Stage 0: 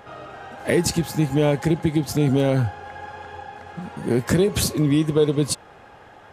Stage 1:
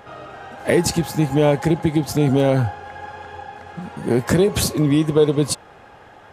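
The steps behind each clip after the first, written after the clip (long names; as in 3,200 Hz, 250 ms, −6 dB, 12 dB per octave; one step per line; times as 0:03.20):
dynamic equaliser 770 Hz, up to +4 dB, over −34 dBFS, Q 1
level +1.5 dB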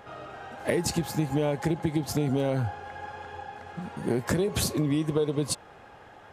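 downward compressor, threshold −17 dBFS, peak gain reduction 7.5 dB
level −5 dB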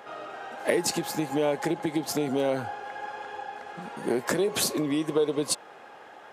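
high-pass filter 300 Hz 12 dB per octave
level +3 dB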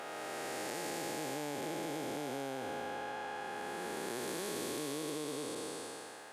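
spectrum smeared in time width 943 ms
spectral tilt +1.5 dB per octave
downward compressor 3 to 1, threshold −36 dBFS, peak gain reduction 5.5 dB
level −1 dB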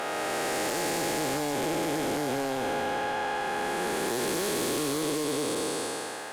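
sine wavefolder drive 9 dB, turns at −24.5 dBFS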